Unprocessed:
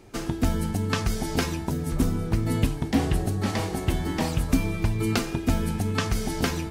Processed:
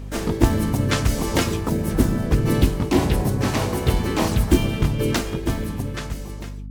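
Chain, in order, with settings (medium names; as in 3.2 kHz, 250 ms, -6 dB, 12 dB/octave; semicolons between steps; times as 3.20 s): fade out at the end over 2.09 s; harmony voices +3 st -6 dB, +5 st -1 dB, +7 st -17 dB; hum 50 Hz, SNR 12 dB; trim +2 dB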